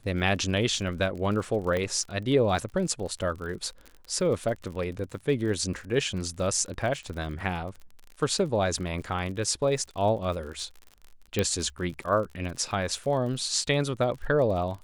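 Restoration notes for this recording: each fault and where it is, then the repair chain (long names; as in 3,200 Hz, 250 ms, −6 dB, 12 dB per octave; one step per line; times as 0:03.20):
surface crackle 50 per second −36 dBFS
0:01.77: click −17 dBFS
0:11.39: click −11 dBFS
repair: click removal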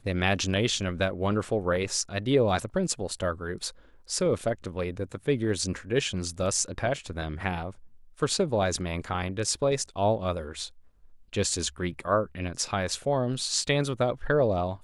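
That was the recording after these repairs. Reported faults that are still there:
0:01.77: click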